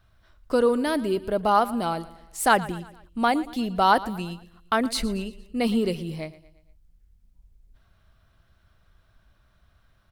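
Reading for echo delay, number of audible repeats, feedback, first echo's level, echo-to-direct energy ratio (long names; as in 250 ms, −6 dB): 116 ms, 3, 49%, −18.0 dB, −17.0 dB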